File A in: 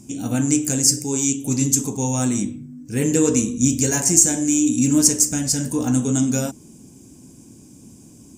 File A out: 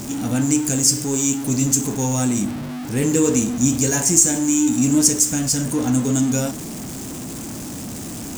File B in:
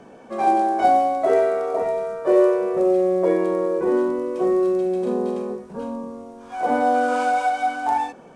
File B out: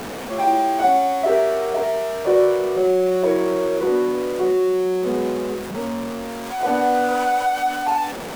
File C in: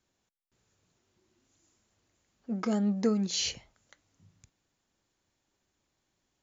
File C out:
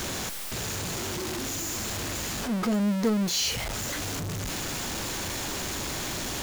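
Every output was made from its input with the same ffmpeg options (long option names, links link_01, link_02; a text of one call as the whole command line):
ffmpeg -i in.wav -af "aeval=exprs='val(0)+0.5*0.0562*sgn(val(0))':channel_layout=same,volume=-1dB" out.wav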